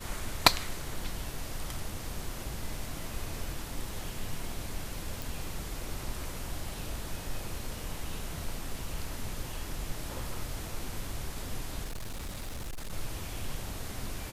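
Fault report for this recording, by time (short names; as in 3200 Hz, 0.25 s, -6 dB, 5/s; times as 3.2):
5.22 pop
11.84–12.93 clipped -34 dBFS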